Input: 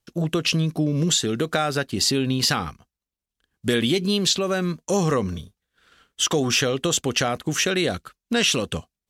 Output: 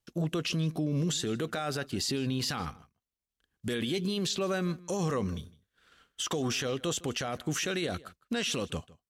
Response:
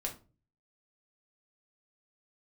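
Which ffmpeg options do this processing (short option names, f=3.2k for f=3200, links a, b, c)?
-filter_complex "[0:a]alimiter=limit=-17.5dB:level=0:latency=1:release=21,asplit=2[a][b];[b]adelay=157.4,volume=-21dB,highshelf=f=4k:g=-3.54[c];[a][c]amix=inputs=2:normalize=0,volume=-5.5dB"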